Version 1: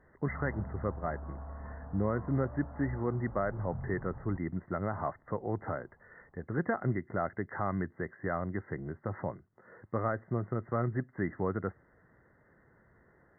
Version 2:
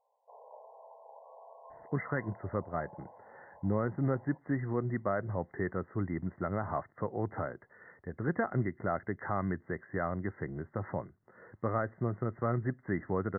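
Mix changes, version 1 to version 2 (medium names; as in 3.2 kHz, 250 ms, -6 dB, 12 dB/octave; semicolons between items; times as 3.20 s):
speech: entry +1.70 s; background: add brick-wall FIR band-pass 430–1100 Hz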